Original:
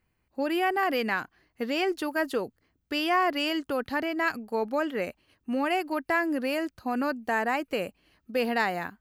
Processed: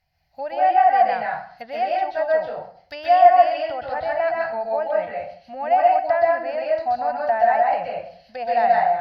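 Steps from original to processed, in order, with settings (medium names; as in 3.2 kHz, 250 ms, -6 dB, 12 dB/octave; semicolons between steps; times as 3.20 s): low-pass that closes with the level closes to 1.5 kHz, closed at -27 dBFS; FFT filter 160 Hz 0 dB, 230 Hz -15 dB, 400 Hz -21 dB, 710 Hz +14 dB, 1.1 kHz -8 dB, 1.9 kHz +2 dB, 2.9 kHz +1 dB, 5.1 kHz +13 dB, 8.8 kHz -16 dB, 13 kHz +5 dB; plate-style reverb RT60 0.54 s, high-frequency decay 0.8×, pre-delay 115 ms, DRR -3 dB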